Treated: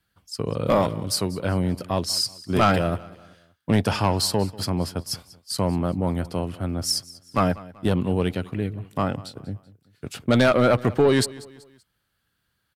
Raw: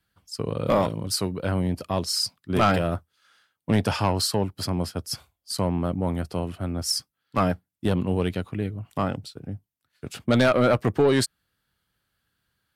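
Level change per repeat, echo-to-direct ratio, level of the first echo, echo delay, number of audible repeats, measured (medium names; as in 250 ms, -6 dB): -7.5 dB, -19.0 dB, -20.0 dB, 191 ms, 2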